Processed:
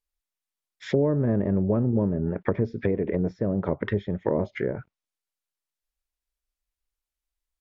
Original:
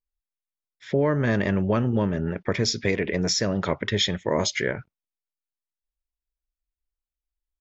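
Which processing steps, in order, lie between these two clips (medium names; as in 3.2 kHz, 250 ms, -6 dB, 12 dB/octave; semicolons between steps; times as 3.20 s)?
low-pass that closes with the level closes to 490 Hz, closed at -21 dBFS; bass shelf 460 Hz -5 dB; trim +4.5 dB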